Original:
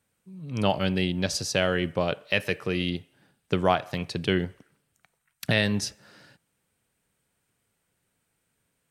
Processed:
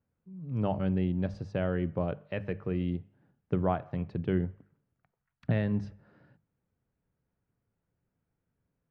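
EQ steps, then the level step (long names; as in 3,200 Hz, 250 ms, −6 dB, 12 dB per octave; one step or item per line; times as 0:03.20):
low-pass filter 1,400 Hz 12 dB per octave
low-shelf EQ 240 Hz +11.5 dB
mains-hum notches 50/100/150/200 Hz
−8.5 dB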